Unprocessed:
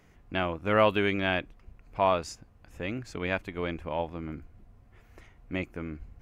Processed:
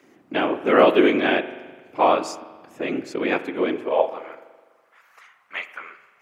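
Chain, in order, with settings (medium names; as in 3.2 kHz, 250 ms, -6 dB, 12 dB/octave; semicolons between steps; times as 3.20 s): whisper effect; high-pass sweep 310 Hz -> 1.2 kHz, 3.69–4.45 s; spring tank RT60 1.4 s, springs 41 ms, chirp 45 ms, DRR 12.5 dB; trim +5.5 dB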